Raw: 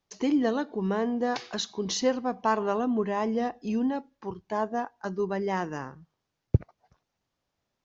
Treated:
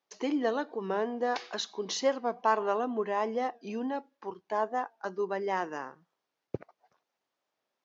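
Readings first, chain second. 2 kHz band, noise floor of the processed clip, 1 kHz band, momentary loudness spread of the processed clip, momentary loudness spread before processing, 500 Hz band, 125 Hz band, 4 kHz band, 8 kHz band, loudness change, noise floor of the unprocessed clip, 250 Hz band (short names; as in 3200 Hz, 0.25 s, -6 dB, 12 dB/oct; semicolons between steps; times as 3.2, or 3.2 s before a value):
-1.0 dB, under -85 dBFS, -0.5 dB, 14 LU, 8 LU, -1.5 dB, under -15 dB, -3.0 dB, n/a, -3.0 dB, -83 dBFS, -8.0 dB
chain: HPF 380 Hz 12 dB/oct; high shelf 5100 Hz -7.5 dB; record warp 45 rpm, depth 100 cents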